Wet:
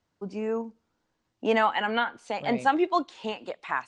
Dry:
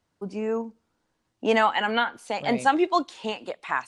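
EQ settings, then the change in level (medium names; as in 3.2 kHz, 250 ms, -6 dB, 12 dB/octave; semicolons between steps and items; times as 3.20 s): low-pass 7.7 kHz 24 dB/octave; dynamic bell 6.1 kHz, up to -5 dB, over -45 dBFS, Q 0.78; -2.0 dB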